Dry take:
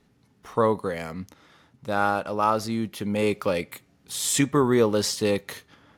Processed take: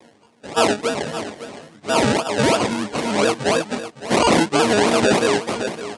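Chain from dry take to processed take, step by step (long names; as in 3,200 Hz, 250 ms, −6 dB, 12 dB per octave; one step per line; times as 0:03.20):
every partial snapped to a pitch grid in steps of 6 semitones
sample-and-hold swept by an LFO 31×, swing 60% 3 Hz
high-pass filter 190 Hz 12 dB per octave
reversed playback
upward compression, threshold −35 dBFS
reversed playback
elliptic low-pass filter 9,400 Hz, stop band 60 dB
on a send: single-tap delay 562 ms −13.5 dB
on the sum: boost into a limiter +8 dB
pitch modulation by a square or saw wave square 3.7 Hz, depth 100 cents
level −2.5 dB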